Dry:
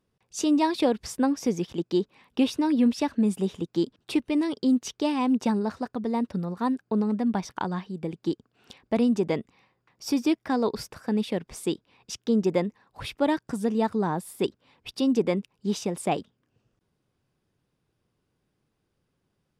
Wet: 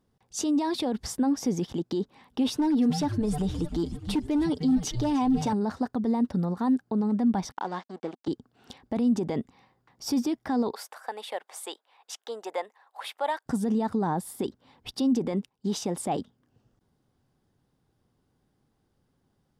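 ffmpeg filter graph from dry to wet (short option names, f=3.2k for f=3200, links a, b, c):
-filter_complex "[0:a]asettb=1/sr,asplit=3[a][b][c];[a]atrim=end=2.514[d];[b]atrim=start=2.51:end=5.53,asetpts=PTS-STARTPTS,afade=t=in:d=0.004:c=qsin,afade=t=out:st=3.016:d=0.004:c=qsin,aecho=1:1:6.7:0.62,atrim=end_sample=133182,asoftclip=type=hard:threshold=-16dB,asplit=6[e][f][g][h][i][j];[f]adelay=306,afreqshift=-140,volume=-13.5dB[k];[g]adelay=612,afreqshift=-280,volume=-19dB[l];[h]adelay=918,afreqshift=-420,volume=-24.5dB[m];[i]adelay=1224,afreqshift=-560,volume=-30dB[n];[j]adelay=1530,afreqshift=-700,volume=-35.6dB[o];[e][k][l][m][n][o]amix=inputs=6:normalize=0,atrim=end_sample=133182[p];[c]atrim=start=5.526[q];[d][p]acrossfade=d=0.004:c1=hsin:c2=qsin[r];[r][q]acrossfade=d=0.004:c1=qsin:c2=hsin,asettb=1/sr,asplit=3[s][t][u];[s]atrim=end=7.524[v];[t]atrim=start=7.52:end=8.28,asetpts=PTS-STARTPTS,afade=t=in:d=0.004:c=qsin,afade=t=out:st=0.756:d=0.004:c=qsin,agate=range=-33dB:threshold=-60dB:ratio=3:release=100:detection=peak,aeval=exprs='sgn(val(0))*max(abs(val(0))-0.0075,0)':c=same,highpass=360,lowpass=6.5k[w];[u]atrim=start=8.276[x];[v][w]acrossfade=d=0.004:c1=hsin:c2=qsin[y];[y][x]acrossfade=d=0.004:c1=qsin:c2=hsin,asettb=1/sr,asplit=3[z][aa][ab];[z]atrim=end=10.734[ac];[aa]atrim=start=10.73:end=13.46,asetpts=PTS-STARTPTS,afade=t=in:d=0.004:c=qsin,afade=t=out:st=2.726:d=0.004:c=qsin,highpass=f=610:w=0.5412,highpass=f=610:w=1.3066,equalizer=f=5.3k:t=o:w=0.67:g=-7[ad];[ab]atrim=start=13.456[ae];[ac][ad]acrossfade=d=0.004:c1=hsin:c2=qsin[af];[af][ae]acrossfade=d=0.004:c1=qsin:c2=hsin,asettb=1/sr,asplit=3[ag][ah][ai];[ag]atrim=end=15.324[aj];[ah]atrim=start=15.32:end=15.98,asetpts=PTS-STARTPTS,afade=t=in:d=0.004:c=qsin,afade=t=out:st=0.656:d=0.004:c=qsin,agate=range=-10dB:threshold=-57dB:ratio=16:release=100:detection=peak,lowshelf=f=200:g=-5[ak];[ai]atrim=start=15.976[al];[aj][ak]acrossfade=d=0.004:c1=hsin:c2=qsin[am];[am][al]acrossfade=d=0.004:c1=qsin:c2=hsin,lowshelf=f=140:g=4.5,alimiter=limit=-22.5dB:level=0:latency=1:release=28,equalizer=f=250:t=o:w=0.33:g=5,equalizer=f=800:t=o:w=0.33:g=6,equalizer=f=2.5k:t=o:w=0.33:g=-7,volume=1.5dB"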